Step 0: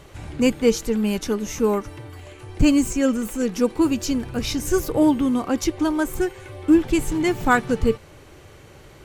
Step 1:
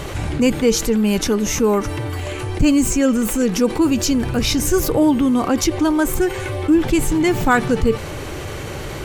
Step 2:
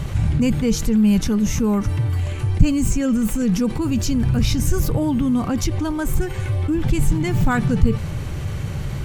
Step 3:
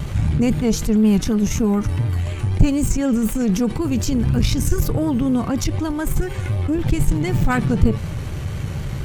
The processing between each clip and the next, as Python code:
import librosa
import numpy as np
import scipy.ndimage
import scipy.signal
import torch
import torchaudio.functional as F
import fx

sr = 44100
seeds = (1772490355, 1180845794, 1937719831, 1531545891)

y1 = fx.env_flatten(x, sr, amount_pct=50)
y2 = fx.low_shelf_res(y1, sr, hz=240.0, db=11.0, q=1.5)
y2 = y2 * librosa.db_to_amplitude(-6.5)
y3 = fx.cheby_harmonics(y2, sr, harmonics=(6,), levels_db=(-22,), full_scale_db=-1.0)
y3 = fx.vibrato(y3, sr, rate_hz=4.0, depth_cents=54.0)